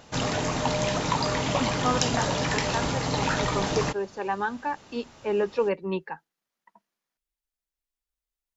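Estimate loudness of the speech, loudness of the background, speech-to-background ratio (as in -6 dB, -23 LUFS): -31.0 LUFS, -26.5 LUFS, -4.5 dB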